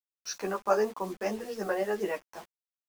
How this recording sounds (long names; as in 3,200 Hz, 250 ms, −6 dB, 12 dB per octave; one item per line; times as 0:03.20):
tremolo saw up 2.2 Hz, depth 35%
a quantiser's noise floor 8 bits, dither none
a shimmering, thickened sound